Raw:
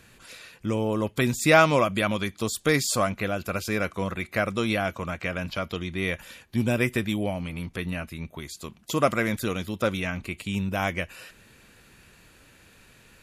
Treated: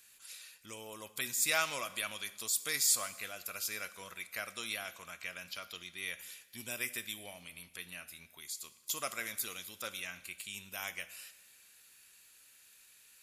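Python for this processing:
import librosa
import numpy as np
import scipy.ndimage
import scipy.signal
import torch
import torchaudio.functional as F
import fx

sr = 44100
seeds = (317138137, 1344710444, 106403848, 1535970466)

y = librosa.effects.preemphasis(x, coef=0.97, zi=[0.0])
y = fx.rev_double_slope(y, sr, seeds[0], early_s=0.98, late_s=2.7, knee_db=-18, drr_db=12.5)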